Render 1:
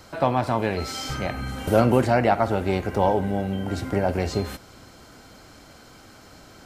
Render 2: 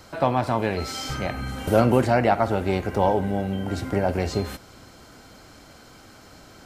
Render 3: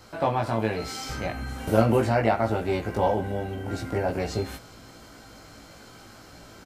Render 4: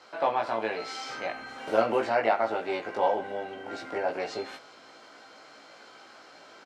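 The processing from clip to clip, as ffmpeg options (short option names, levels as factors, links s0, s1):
-af anull
-filter_complex "[0:a]areverse,acompressor=mode=upward:threshold=0.0112:ratio=2.5,areverse,asplit=2[s0][s1];[s1]adelay=18,volume=0.794[s2];[s0][s2]amix=inputs=2:normalize=0,volume=0.596"
-af "highpass=470,lowpass=4600"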